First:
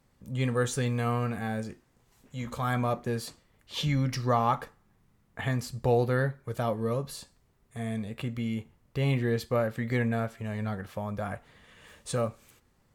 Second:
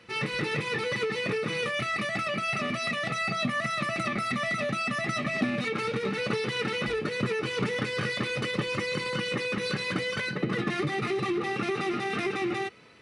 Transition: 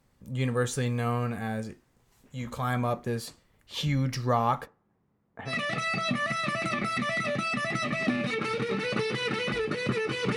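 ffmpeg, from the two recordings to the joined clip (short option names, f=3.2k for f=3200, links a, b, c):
-filter_complex "[0:a]asplit=3[a][b][c];[a]afade=t=out:st=4.65:d=0.02[d];[b]bandpass=f=430:t=q:w=0.55:csg=0,afade=t=in:st=4.65:d=0.02,afade=t=out:st=5.55:d=0.02[e];[c]afade=t=in:st=5.55:d=0.02[f];[d][e][f]amix=inputs=3:normalize=0,apad=whole_dur=10.36,atrim=end=10.36,atrim=end=5.55,asetpts=PTS-STARTPTS[g];[1:a]atrim=start=2.79:end=7.7,asetpts=PTS-STARTPTS[h];[g][h]acrossfade=d=0.1:c1=tri:c2=tri"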